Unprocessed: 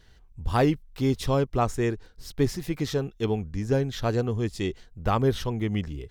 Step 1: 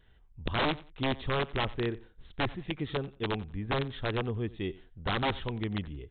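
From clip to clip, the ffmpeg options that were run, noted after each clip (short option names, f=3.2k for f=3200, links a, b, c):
-af "aresample=8000,aeval=exprs='(mod(6.68*val(0)+1,2)-1)/6.68':c=same,aresample=44100,aecho=1:1:90|180:0.1|0.023,volume=-6dB"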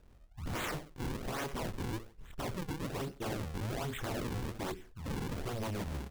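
-filter_complex "[0:a]asplit=2[a][b];[b]adelay=27,volume=-2.5dB[c];[a][c]amix=inputs=2:normalize=0,acrusher=samples=40:mix=1:aa=0.000001:lfo=1:lforange=64:lforate=1.2,aeval=exprs='0.0251*(abs(mod(val(0)/0.0251+3,4)-2)-1)':c=same"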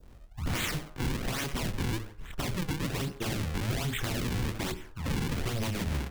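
-filter_complex "[0:a]bandreject=f=102.9:t=h:w=4,bandreject=f=205.8:t=h:w=4,bandreject=f=308.7:t=h:w=4,bandreject=f=411.6:t=h:w=4,bandreject=f=514.5:t=h:w=4,bandreject=f=617.4:t=h:w=4,bandreject=f=720.3:t=h:w=4,bandreject=f=823.2:t=h:w=4,bandreject=f=926.1:t=h:w=4,bandreject=f=1.029k:t=h:w=4,bandreject=f=1.1319k:t=h:w=4,bandreject=f=1.2348k:t=h:w=4,bandreject=f=1.3377k:t=h:w=4,bandreject=f=1.4406k:t=h:w=4,bandreject=f=1.5435k:t=h:w=4,bandreject=f=1.6464k:t=h:w=4,adynamicequalizer=threshold=0.00158:dfrequency=2100:dqfactor=0.83:tfrequency=2100:tqfactor=0.83:attack=5:release=100:ratio=0.375:range=3:mode=boostabove:tftype=bell,acrossover=split=270|3000[a][b][c];[b]acompressor=threshold=-45dB:ratio=6[d];[a][d][c]amix=inputs=3:normalize=0,volume=8dB"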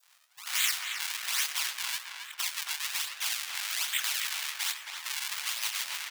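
-filter_complex "[0:a]highpass=f=900:w=0.5412,highpass=f=900:w=1.3066,tiltshelf=f=1.4k:g=-9.5,asplit=2[a][b];[b]adelay=270,lowpass=f=2.8k:p=1,volume=-3.5dB,asplit=2[c][d];[d]adelay=270,lowpass=f=2.8k:p=1,volume=0.41,asplit=2[e][f];[f]adelay=270,lowpass=f=2.8k:p=1,volume=0.41,asplit=2[g][h];[h]adelay=270,lowpass=f=2.8k:p=1,volume=0.41,asplit=2[i][j];[j]adelay=270,lowpass=f=2.8k:p=1,volume=0.41[k];[a][c][e][g][i][k]amix=inputs=6:normalize=0"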